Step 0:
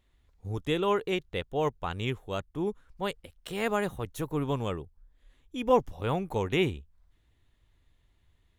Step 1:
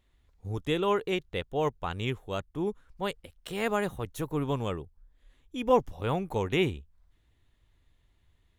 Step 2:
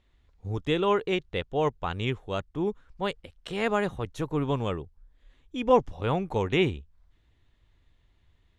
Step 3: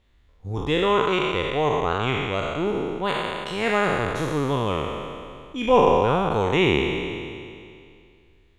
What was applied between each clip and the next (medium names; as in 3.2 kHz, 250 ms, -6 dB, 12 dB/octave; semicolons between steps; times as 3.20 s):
no audible change
low-pass 6.1 kHz 12 dB/octave; trim +2.5 dB
spectral sustain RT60 2.33 s; trim +1.5 dB